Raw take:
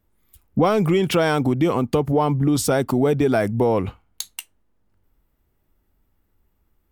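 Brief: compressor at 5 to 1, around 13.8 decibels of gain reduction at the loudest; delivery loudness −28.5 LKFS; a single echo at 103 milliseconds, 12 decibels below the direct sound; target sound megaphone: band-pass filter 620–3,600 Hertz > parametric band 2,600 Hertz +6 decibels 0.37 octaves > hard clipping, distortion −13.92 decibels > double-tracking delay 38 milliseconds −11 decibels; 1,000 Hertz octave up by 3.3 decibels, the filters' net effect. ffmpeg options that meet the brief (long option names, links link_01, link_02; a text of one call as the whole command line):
ffmpeg -i in.wav -filter_complex "[0:a]equalizer=frequency=1000:width_type=o:gain=5.5,acompressor=threshold=-29dB:ratio=5,highpass=620,lowpass=3600,equalizer=frequency=2600:width_type=o:width=0.37:gain=6,aecho=1:1:103:0.251,asoftclip=type=hard:threshold=-29.5dB,asplit=2[link_01][link_02];[link_02]adelay=38,volume=-11dB[link_03];[link_01][link_03]amix=inputs=2:normalize=0,volume=9.5dB" out.wav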